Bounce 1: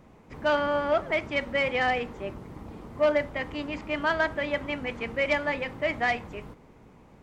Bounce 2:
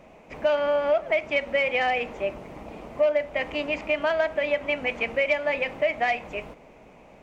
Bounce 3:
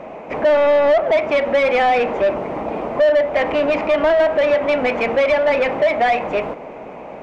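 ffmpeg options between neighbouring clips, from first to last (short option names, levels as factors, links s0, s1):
-af "equalizer=f=100:t=o:w=0.67:g=-9,equalizer=f=630:t=o:w=0.67:g=12,equalizer=f=2500:t=o:w=0.67:g=11,equalizer=f=6300:t=o:w=0.67:g=4,acompressor=threshold=0.0794:ratio=3"
-filter_complex "[0:a]tiltshelf=f=1400:g=4.5,asplit=2[s0][s1];[s1]highpass=f=720:p=1,volume=14.1,asoftclip=type=tanh:threshold=0.335[s2];[s0][s2]amix=inputs=2:normalize=0,lowpass=f=1400:p=1,volume=0.501,acrossover=split=4700[s3][s4];[s4]acompressor=threshold=0.00282:ratio=4:attack=1:release=60[s5];[s3][s5]amix=inputs=2:normalize=0,volume=1.33"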